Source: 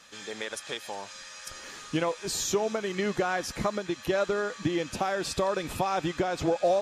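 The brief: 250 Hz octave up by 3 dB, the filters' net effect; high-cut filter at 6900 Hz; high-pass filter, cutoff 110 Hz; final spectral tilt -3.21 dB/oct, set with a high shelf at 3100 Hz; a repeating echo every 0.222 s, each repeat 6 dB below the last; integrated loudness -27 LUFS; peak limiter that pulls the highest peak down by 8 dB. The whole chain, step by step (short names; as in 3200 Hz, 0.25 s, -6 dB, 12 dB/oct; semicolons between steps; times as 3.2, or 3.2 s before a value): HPF 110 Hz; LPF 6900 Hz; bell 250 Hz +5 dB; high shelf 3100 Hz +7.5 dB; limiter -20 dBFS; feedback echo 0.222 s, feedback 50%, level -6 dB; gain +2.5 dB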